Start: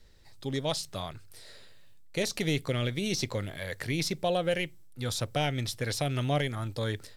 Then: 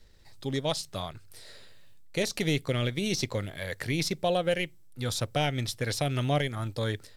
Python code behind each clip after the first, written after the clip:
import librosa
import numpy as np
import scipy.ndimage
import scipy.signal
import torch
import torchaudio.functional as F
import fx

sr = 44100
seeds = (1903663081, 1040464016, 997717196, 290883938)

y = fx.transient(x, sr, attack_db=0, sustain_db=-4)
y = F.gain(torch.from_numpy(y), 1.5).numpy()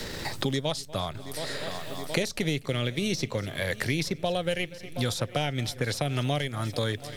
y = fx.echo_heads(x, sr, ms=241, heads='first and third', feedback_pct=41, wet_db=-23)
y = fx.band_squash(y, sr, depth_pct=100)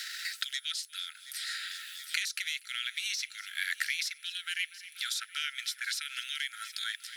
y = x + 10.0 ** (-59.0 / 20.0) * np.sin(2.0 * np.pi * 10000.0 * np.arange(len(x)) / sr)
y = fx.brickwall_highpass(y, sr, low_hz=1300.0)